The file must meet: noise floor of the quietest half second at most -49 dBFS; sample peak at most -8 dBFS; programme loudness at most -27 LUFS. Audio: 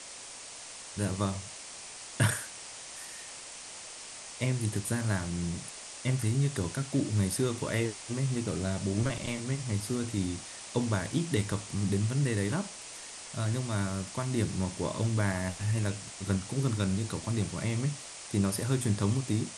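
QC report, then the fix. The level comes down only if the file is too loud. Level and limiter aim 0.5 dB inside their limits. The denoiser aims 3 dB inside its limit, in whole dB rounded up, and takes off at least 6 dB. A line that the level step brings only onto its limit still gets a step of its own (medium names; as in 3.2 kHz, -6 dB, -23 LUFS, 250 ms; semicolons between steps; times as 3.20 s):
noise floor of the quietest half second -45 dBFS: fail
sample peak -11.5 dBFS: pass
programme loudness -32.5 LUFS: pass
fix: noise reduction 7 dB, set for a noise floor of -45 dBFS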